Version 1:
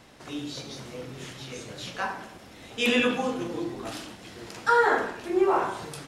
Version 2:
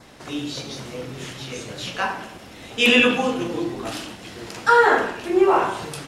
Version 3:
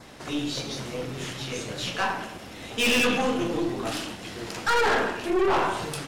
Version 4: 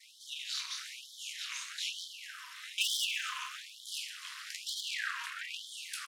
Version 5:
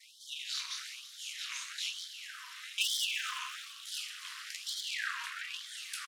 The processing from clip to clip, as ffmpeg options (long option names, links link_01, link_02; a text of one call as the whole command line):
ffmpeg -i in.wav -af "adynamicequalizer=threshold=0.00398:dfrequency=2800:dqfactor=4.4:tfrequency=2800:tqfactor=4.4:attack=5:release=100:ratio=0.375:range=3:mode=boostabove:tftype=bell,volume=6dB" out.wav
ffmpeg -i in.wav -af "aeval=exprs='(tanh(11.2*val(0)+0.35)-tanh(0.35))/11.2':channel_layout=same,volume=1.5dB" out.wav
ffmpeg -i in.wav -af "aecho=1:1:125|250|375|500|625|750:0.2|0.118|0.0695|0.041|0.0242|0.0143,tremolo=f=270:d=0.919,afftfilt=real='re*gte(b*sr/1024,930*pow(3100/930,0.5+0.5*sin(2*PI*1.1*pts/sr)))':imag='im*gte(b*sr/1024,930*pow(3100/930,0.5+0.5*sin(2*PI*1.1*pts/sr)))':win_size=1024:overlap=0.75" out.wav
ffmpeg -i in.wav -filter_complex "[0:a]asplit=7[link_01][link_02][link_03][link_04][link_05][link_06][link_07];[link_02]adelay=339,afreqshift=99,volume=-16.5dB[link_08];[link_03]adelay=678,afreqshift=198,volume=-20.9dB[link_09];[link_04]adelay=1017,afreqshift=297,volume=-25.4dB[link_10];[link_05]adelay=1356,afreqshift=396,volume=-29.8dB[link_11];[link_06]adelay=1695,afreqshift=495,volume=-34.2dB[link_12];[link_07]adelay=2034,afreqshift=594,volume=-38.7dB[link_13];[link_01][link_08][link_09][link_10][link_11][link_12][link_13]amix=inputs=7:normalize=0" out.wav